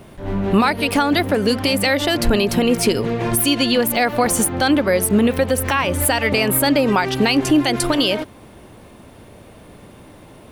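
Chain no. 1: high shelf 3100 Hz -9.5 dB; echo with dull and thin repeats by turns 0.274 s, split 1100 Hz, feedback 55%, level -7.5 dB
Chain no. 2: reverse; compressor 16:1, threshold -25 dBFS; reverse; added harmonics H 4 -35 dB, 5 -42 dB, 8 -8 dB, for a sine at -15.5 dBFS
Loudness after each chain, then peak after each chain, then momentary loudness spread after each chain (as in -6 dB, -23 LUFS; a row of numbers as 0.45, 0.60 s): -18.0, -25.0 LUFS; -4.5, -14.0 dBFS; 8, 17 LU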